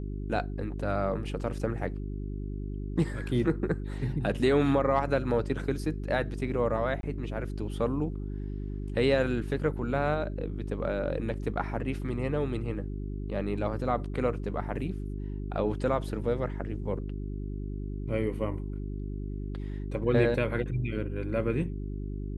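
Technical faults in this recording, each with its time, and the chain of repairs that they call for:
mains hum 50 Hz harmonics 8 −35 dBFS
0:07.01–0:07.03: drop-out 22 ms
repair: hum removal 50 Hz, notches 8
repair the gap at 0:07.01, 22 ms

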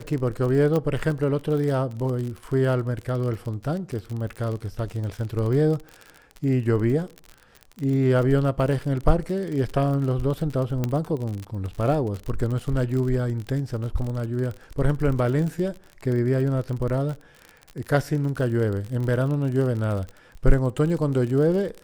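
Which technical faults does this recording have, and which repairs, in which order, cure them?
surface crackle 40 per second −29 dBFS
0:00.76: click −14 dBFS
0:10.84: click −12 dBFS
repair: click removal

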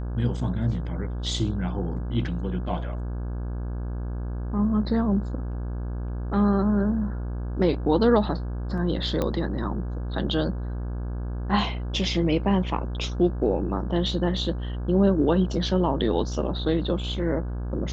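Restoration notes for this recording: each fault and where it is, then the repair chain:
mains buzz 60 Hz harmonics 28 −30 dBFS
0:09.22: click −13 dBFS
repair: click removal
hum removal 60 Hz, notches 28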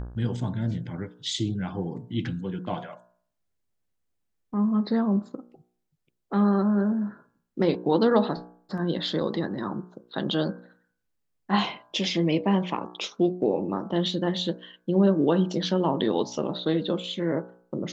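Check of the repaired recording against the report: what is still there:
none of them is left

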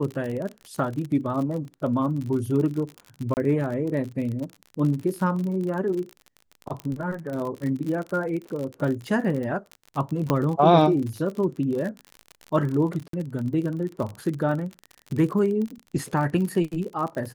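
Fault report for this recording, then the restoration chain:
surface crackle 43 per second −30 dBFS
0:03.34–0:03.37: drop-out 29 ms
0:06.80: click −20 dBFS
0:10.30: click −9 dBFS
0:13.08–0:13.13: drop-out 53 ms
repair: click removal
repair the gap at 0:03.34, 29 ms
repair the gap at 0:13.08, 53 ms

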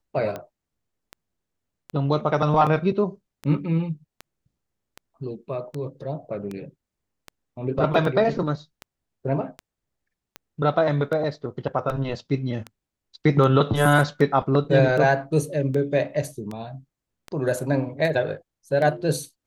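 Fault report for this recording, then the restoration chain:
scratch tick 78 rpm −19 dBFS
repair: click removal

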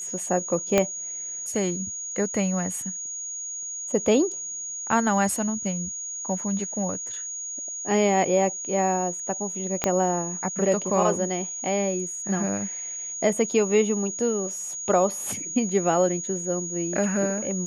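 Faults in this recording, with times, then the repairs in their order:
whistle 6,700 Hz −31 dBFS
0:00.78: click −6 dBFS
0:09.84: click −7 dBFS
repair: click removal
notch filter 6,700 Hz, Q 30

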